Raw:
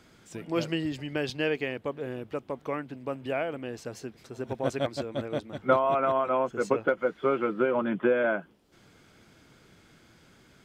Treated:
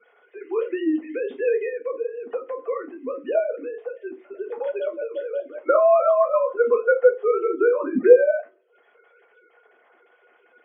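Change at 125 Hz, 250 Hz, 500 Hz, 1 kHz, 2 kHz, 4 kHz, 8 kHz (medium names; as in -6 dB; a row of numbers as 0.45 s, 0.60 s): under -15 dB, +2.0 dB, +9.0 dB, +2.5 dB, +2.0 dB, under -10 dB, no reading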